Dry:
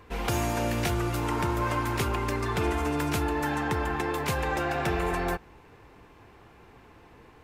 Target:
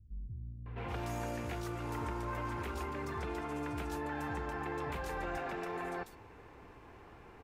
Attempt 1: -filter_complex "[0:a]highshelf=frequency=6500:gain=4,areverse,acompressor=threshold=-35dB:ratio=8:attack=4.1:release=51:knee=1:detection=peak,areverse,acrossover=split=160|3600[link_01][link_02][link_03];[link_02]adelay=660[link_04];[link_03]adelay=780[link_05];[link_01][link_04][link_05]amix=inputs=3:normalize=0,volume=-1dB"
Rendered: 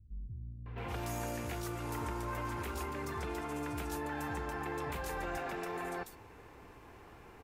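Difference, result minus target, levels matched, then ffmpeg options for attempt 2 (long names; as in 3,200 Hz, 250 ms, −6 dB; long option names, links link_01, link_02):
8,000 Hz band +6.0 dB
-filter_complex "[0:a]highshelf=frequency=6500:gain=-7,areverse,acompressor=threshold=-35dB:ratio=8:attack=4.1:release=51:knee=1:detection=peak,areverse,acrossover=split=160|3600[link_01][link_02][link_03];[link_02]adelay=660[link_04];[link_03]adelay=780[link_05];[link_01][link_04][link_05]amix=inputs=3:normalize=0,volume=-1dB"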